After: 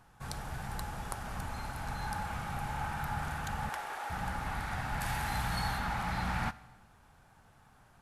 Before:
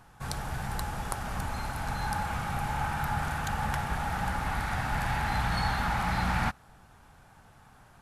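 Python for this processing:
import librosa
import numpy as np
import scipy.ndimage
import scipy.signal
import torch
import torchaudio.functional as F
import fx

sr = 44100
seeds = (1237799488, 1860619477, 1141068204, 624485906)

y = fx.steep_highpass(x, sr, hz=330.0, slope=36, at=(3.69, 4.1))
y = fx.high_shelf(y, sr, hz=fx.line((5.0, 4600.0), (5.77, 9200.0)), db=11.5, at=(5.0, 5.77), fade=0.02)
y = fx.rev_schroeder(y, sr, rt60_s=1.2, comb_ms=32, drr_db=18.0)
y = y * librosa.db_to_amplitude(-5.5)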